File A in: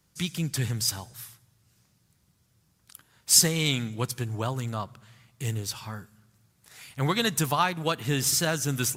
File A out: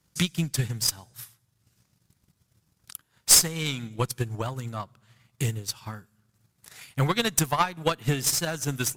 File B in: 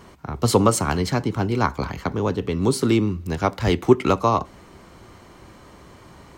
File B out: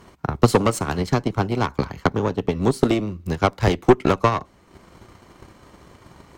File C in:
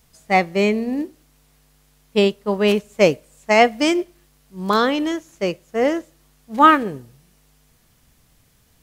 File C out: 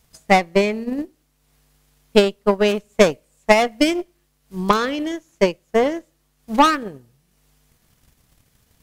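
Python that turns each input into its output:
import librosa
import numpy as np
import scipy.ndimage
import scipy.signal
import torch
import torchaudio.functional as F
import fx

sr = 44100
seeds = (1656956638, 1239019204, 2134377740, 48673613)

y = fx.tube_stage(x, sr, drive_db=15.0, bias=0.55)
y = fx.transient(y, sr, attack_db=11, sustain_db=-6)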